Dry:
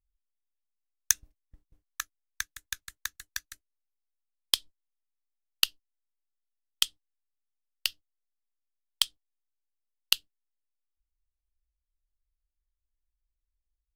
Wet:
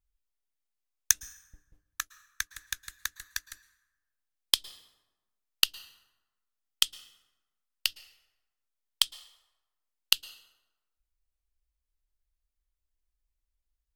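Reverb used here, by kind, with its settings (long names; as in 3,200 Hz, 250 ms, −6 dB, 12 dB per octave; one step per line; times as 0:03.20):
dense smooth reverb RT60 1.1 s, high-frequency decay 0.6×, pre-delay 100 ms, DRR 18.5 dB
level +1 dB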